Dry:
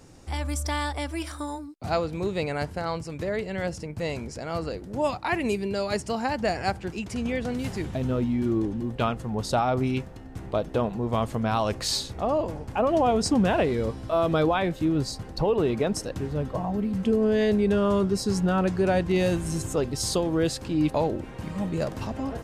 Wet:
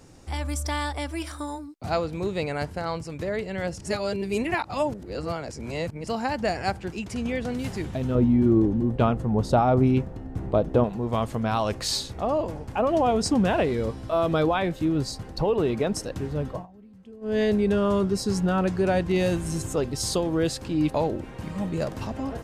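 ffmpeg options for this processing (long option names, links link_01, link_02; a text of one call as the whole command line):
ffmpeg -i in.wav -filter_complex "[0:a]asettb=1/sr,asplit=3[link_01][link_02][link_03];[link_01]atrim=end=8.154[link_04];[link_02]atrim=start=8.15:end=10.84,asetpts=PTS-STARTPTS,afade=type=in:duration=0.004:curve=qsin,afade=type=out:start_time=2.686:duration=0.004:curve=qsin,tiltshelf=frequency=1300:gain=6.5[link_05];[link_03]atrim=start=10.836[link_06];[link_04][link_05]acrossfade=duration=0.004:curve1=hsin:curve2=qsin[link_07];[link_07][link_06]acrossfade=duration=0.004:curve1=qsin:curve2=hsin,asplit=5[link_08][link_09][link_10][link_11][link_12];[link_08]atrim=end=3.802[link_13];[link_09]atrim=start=3.798:end=6.072,asetpts=PTS-STARTPTS,areverse[link_14];[link_10]atrim=start=6.068:end=16.67,asetpts=PTS-STARTPTS,afade=type=out:start_time=10.432:duration=0.17:silence=0.0749894[link_15];[link_11]atrim=start=16.67:end=17.21,asetpts=PTS-STARTPTS,volume=-22.5dB[link_16];[link_12]atrim=start=17.21,asetpts=PTS-STARTPTS,afade=type=in:duration=0.17:silence=0.0749894[link_17];[link_13][link_14]acrossfade=duration=0.004:curve1=hsin:curve2=hsin[link_18];[link_15][link_16][link_17]concat=n=3:v=0:a=1[link_19];[link_18][link_19]acrossfade=duration=0.004:curve1=hsin:curve2=hsin" out.wav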